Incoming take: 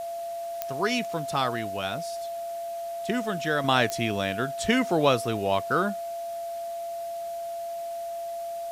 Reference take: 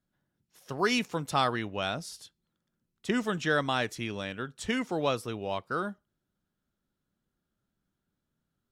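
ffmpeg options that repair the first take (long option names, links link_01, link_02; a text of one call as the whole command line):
ffmpeg -i in.wav -af "adeclick=threshold=4,bandreject=frequency=680:width=30,afwtdn=0.0032,asetnsamples=nb_out_samples=441:pad=0,asendcmd='3.64 volume volume -7dB',volume=0dB" out.wav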